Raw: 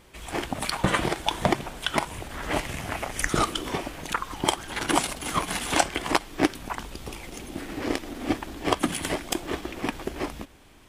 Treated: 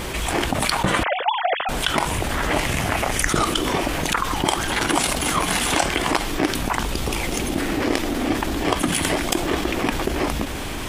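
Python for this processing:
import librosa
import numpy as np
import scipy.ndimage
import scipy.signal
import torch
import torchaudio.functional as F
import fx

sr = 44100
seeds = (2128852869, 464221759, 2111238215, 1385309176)

y = fx.sine_speech(x, sr, at=(1.03, 1.69))
y = fx.env_flatten(y, sr, amount_pct=70)
y = F.gain(torch.from_numpy(y), -1.0).numpy()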